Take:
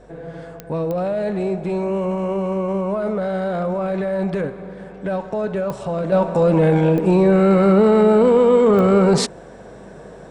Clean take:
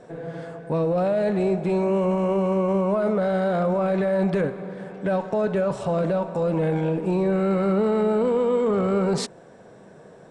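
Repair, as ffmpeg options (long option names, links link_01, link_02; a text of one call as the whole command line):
ffmpeg -i in.wav -af "adeclick=threshold=4,bandreject=frequency=49.6:width_type=h:width=4,bandreject=frequency=99.2:width_type=h:width=4,bandreject=frequency=148.8:width_type=h:width=4,bandreject=frequency=198.4:width_type=h:width=4,bandreject=frequency=248:width_type=h:width=4,asetnsamples=nb_out_samples=441:pad=0,asendcmd='6.12 volume volume -8dB',volume=0dB" out.wav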